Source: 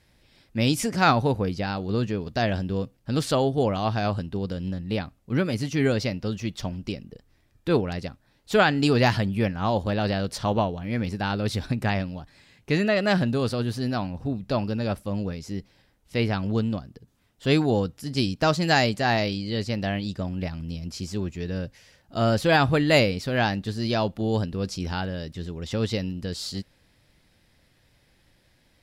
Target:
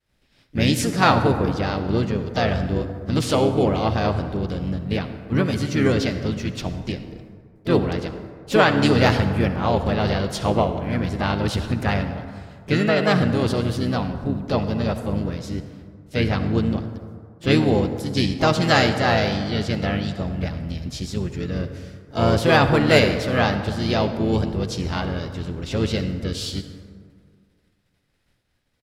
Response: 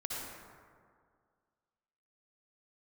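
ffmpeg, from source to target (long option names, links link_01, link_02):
-filter_complex "[0:a]asplit=3[link_01][link_02][link_03];[link_02]asetrate=33038,aresample=44100,atempo=1.33484,volume=-4dB[link_04];[link_03]asetrate=55563,aresample=44100,atempo=0.793701,volume=-15dB[link_05];[link_01][link_04][link_05]amix=inputs=3:normalize=0,agate=range=-33dB:threshold=-51dB:ratio=3:detection=peak,asplit=2[link_06][link_07];[1:a]atrim=start_sample=2205[link_08];[link_07][link_08]afir=irnorm=-1:irlink=0,volume=-8.5dB[link_09];[link_06][link_09]amix=inputs=2:normalize=0"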